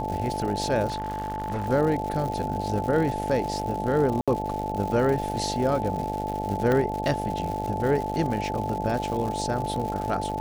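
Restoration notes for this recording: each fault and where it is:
buzz 50 Hz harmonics 17 -32 dBFS
crackle 180/s -31 dBFS
tone 870 Hz -30 dBFS
0.87–1.69 clipped -25 dBFS
4.21–4.28 gap 66 ms
6.72 pop -13 dBFS

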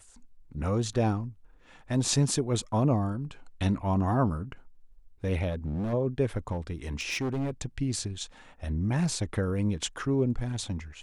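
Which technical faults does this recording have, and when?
5.49–5.94 clipped -28 dBFS
6.51–7.51 clipped -26.5 dBFS

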